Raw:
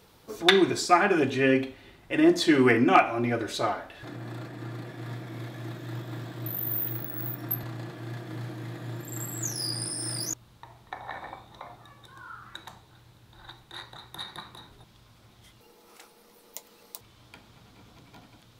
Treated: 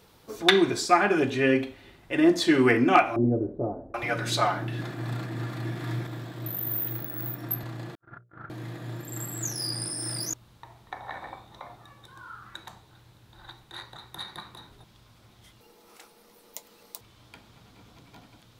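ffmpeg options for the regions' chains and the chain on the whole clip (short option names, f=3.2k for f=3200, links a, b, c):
-filter_complex "[0:a]asettb=1/sr,asplit=3[a][b][c];[a]atrim=end=3.164[d];[b]atrim=start=3.16:end=6.07,asetpts=PTS-STARTPTS,afade=t=in:d=0.004:c=qsin,afade=t=out:st=2.906:d=0.004:c=qsin,acontrast=39,acrossover=split=550[e][f];[f]adelay=780[g];[e][g]amix=inputs=2:normalize=0,atrim=end_sample=128331[h];[c]atrim=start=6.066[i];[d][h]acrossfade=d=0.004:c1=hsin:c2=qsin[j];[j][i]acrossfade=d=0.004:c1=qsin:c2=hsin,asettb=1/sr,asplit=3[k][l][m];[k]atrim=end=7.954[n];[l]atrim=start=7.95:end=8.5,asetpts=PTS-STARTPTS,afade=t=in:d=0.004:c=qsin,afade=t=out:st=0.546:d=0.004:c=qsin,agate=range=-59dB:threshold=-35dB:ratio=16:release=100:detection=peak,lowpass=f=1.4k:t=q:w=14,bandreject=f=60:t=h:w=6,bandreject=f=120:t=h:w=6,bandreject=f=180:t=h:w=6,bandreject=f=240:t=h:w=6,bandreject=f=300:t=h:w=6,bandreject=f=360:t=h:w=6,bandreject=f=420:t=h:w=6,bandreject=f=480:t=h:w=6,bandreject=f=540:t=h:w=6,bandreject=f=600:t=h:w=6[o];[m]atrim=start=8.496[p];[n][o]acrossfade=d=0.004:c1=hsin:c2=qsin[q];[q][p]acrossfade=d=0.004:c1=qsin:c2=hsin"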